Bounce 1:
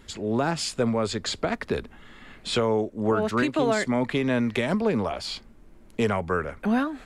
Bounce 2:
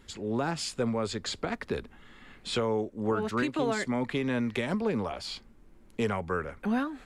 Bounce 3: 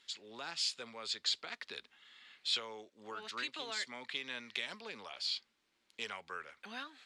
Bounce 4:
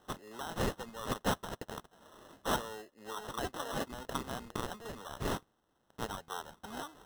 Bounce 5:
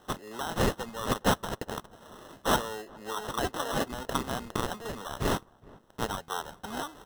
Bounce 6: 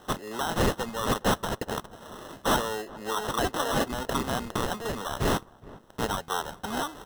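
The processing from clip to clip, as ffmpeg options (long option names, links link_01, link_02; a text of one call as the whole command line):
ffmpeg -i in.wav -af "bandreject=frequency=640:width=12,volume=-5dB" out.wav
ffmpeg -i in.wav -af "bandpass=frequency=4000:width_type=q:width=1.6:csg=0,volume=3dB" out.wav
ffmpeg -i in.wav -af "acrusher=samples=19:mix=1:aa=0.000001,volume=3dB" out.wav
ffmpeg -i in.wav -filter_complex "[0:a]asplit=2[link_01][link_02];[link_02]adelay=415,lowpass=frequency=1200:poles=1,volume=-23dB,asplit=2[link_03][link_04];[link_04]adelay=415,lowpass=frequency=1200:poles=1,volume=0.49,asplit=2[link_05][link_06];[link_06]adelay=415,lowpass=frequency=1200:poles=1,volume=0.49[link_07];[link_01][link_03][link_05][link_07]amix=inputs=4:normalize=0,volume=7dB" out.wav
ffmpeg -i in.wav -af "asoftclip=type=tanh:threshold=-24.5dB,volume=6dB" out.wav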